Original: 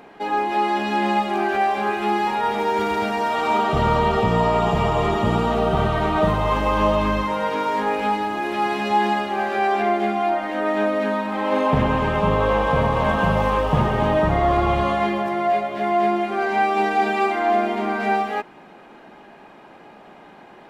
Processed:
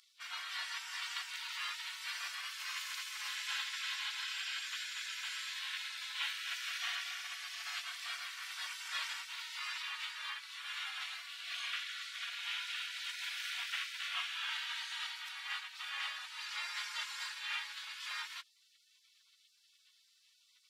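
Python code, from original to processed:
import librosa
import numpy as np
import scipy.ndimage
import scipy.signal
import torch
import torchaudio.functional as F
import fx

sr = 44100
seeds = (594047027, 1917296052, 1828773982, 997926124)

y = fx.spec_gate(x, sr, threshold_db=-30, keep='weak')
y = scipy.signal.sosfilt(scipy.signal.bessel(8, 1500.0, 'highpass', norm='mag', fs=sr, output='sos'), y)
y = fx.high_shelf(y, sr, hz=5100.0, db=-9.5)
y = F.gain(torch.from_numpy(y), 6.5).numpy()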